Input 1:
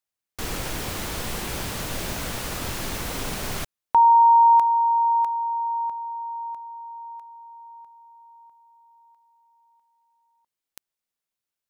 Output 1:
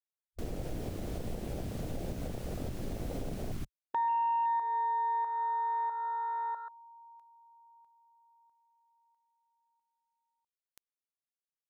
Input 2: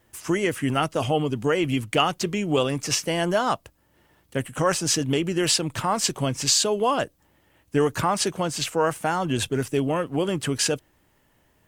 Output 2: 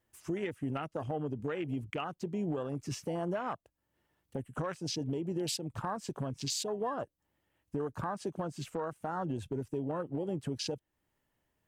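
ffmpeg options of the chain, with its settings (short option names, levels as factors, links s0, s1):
-af "afwtdn=0.0447,acompressor=threshold=0.0355:ratio=6:attack=0.36:release=610:knee=6:detection=peak"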